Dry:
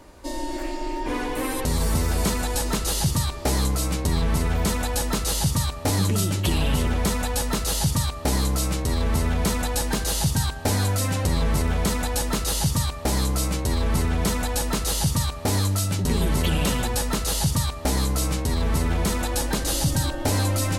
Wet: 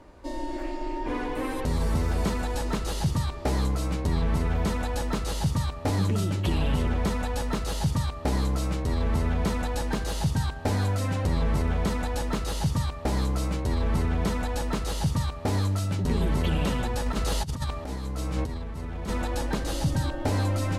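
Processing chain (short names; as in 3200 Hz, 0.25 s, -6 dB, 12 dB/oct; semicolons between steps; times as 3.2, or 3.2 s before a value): LPF 2200 Hz 6 dB/oct; 17.06–19.1 negative-ratio compressor -26 dBFS, ratio -0.5; gain -2.5 dB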